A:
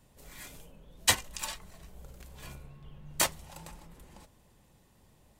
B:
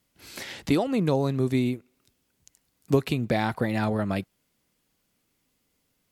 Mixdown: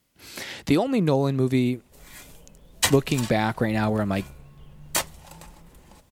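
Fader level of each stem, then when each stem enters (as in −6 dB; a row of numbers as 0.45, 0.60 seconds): +2.5, +2.5 decibels; 1.75, 0.00 seconds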